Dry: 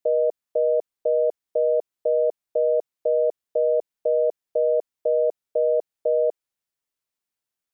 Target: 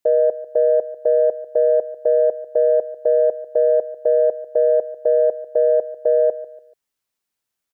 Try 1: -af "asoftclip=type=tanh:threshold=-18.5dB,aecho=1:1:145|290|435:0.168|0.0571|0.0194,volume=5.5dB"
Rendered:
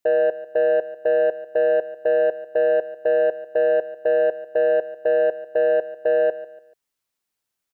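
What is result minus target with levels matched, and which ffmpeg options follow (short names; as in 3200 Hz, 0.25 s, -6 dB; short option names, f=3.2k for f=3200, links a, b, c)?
soft clip: distortion +18 dB
-af "asoftclip=type=tanh:threshold=-7.5dB,aecho=1:1:145|290|435:0.168|0.0571|0.0194,volume=5.5dB"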